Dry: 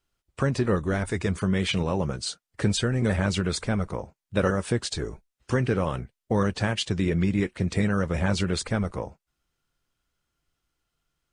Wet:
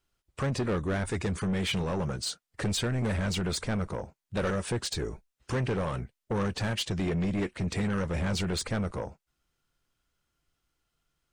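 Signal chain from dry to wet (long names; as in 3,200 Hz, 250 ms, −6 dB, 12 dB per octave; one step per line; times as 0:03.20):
soft clipping −24.5 dBFS, distortion −9 dB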